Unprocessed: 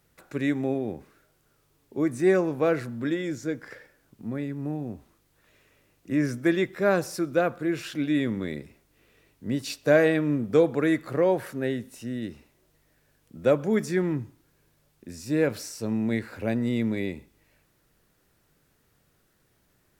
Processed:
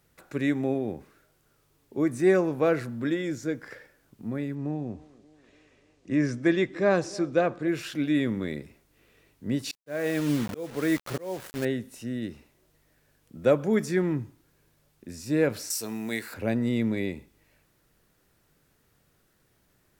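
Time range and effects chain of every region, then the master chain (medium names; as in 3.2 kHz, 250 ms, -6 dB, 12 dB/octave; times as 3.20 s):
4.55–7.68 s: low-pass 7.6 kHz 24 dB/octave + band-stop 1.4 kHz, Q 13 + band-passed feedback delay 290 ms, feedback 67%, band-pass 460 Hz, level -20 dB
9.71–11.65 s: word length cut 6-bit, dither none + slow attack 449 ms
15.70–16.34 s: RIAA curve recording + band-stop 550 Hz, Q 10
whole clip: none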